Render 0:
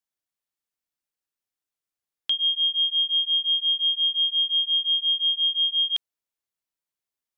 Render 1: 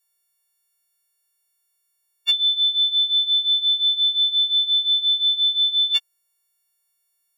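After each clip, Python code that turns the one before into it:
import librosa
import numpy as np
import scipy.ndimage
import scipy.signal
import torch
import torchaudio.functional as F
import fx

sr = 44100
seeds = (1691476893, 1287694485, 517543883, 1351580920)

y = fx.freq_snap(x, sr, grid_st=4)
y = y * 10.0 ** (4.5 / 20.0)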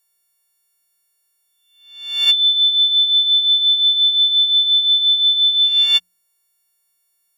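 y = fx.spec_swells(x, sr, rise_s=0.72)
y = fx.hum_notches(y, sr, base_hz=60, count=3)
y = y * 10.0 ** (4.5 / 20.0)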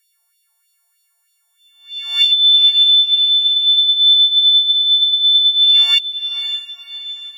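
y = fx.filter_lfo_highpass(x, sr, shape='sine', hz=3.2, low_hz=720.0, high_hz=3700.0, q=3.4)
y = fx.over_compress(y, sr, threshold_db=-10.0, ratio=-1.0)
y = fx.echo_diffused(y, sr, ms=528, feedback_pct=48, wet_db=-10.5)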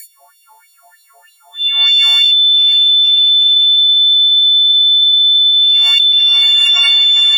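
y = fx.noise_reduce_blind(x, sr, reduce_db=27)
y = fx.peak_eq(y, sr, hz=1600.0, db=-5.0, octaves=0.36)
y = fx.env_flatten(y, sr, amount_pct=100)
y = y * 10.0 ** (-1.0 / 20.0)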